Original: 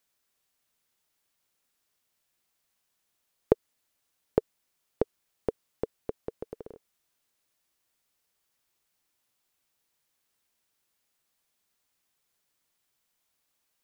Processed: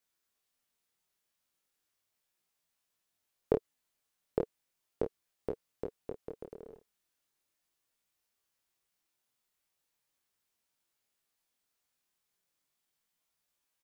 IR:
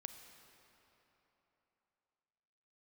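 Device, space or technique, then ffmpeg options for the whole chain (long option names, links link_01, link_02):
double-tracked vocal: -filter_complex "[0:a]asplit=2[link_01][link_02];[link_02]adelay=29,volume=-7dB[link_03];[link_01][link_03]amix=inputs=2:normalize=0,flanger=delay=17:depth=7.3:speed=0.37,volume=-3dB"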